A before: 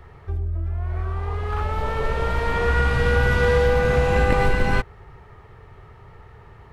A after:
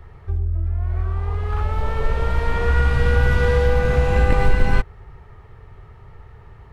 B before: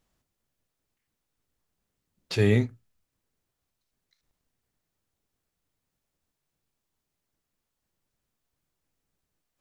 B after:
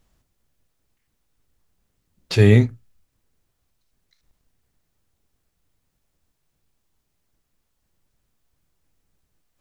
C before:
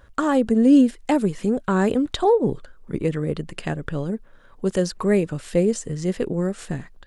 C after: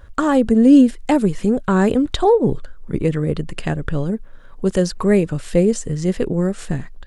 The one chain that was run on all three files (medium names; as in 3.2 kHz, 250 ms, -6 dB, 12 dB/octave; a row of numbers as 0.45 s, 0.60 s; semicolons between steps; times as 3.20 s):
bass shelf 94 Hz +9 dB; peak normalisation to -3 dBFS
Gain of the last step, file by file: -2.0 dB, +6.5 dB, +3.0 dB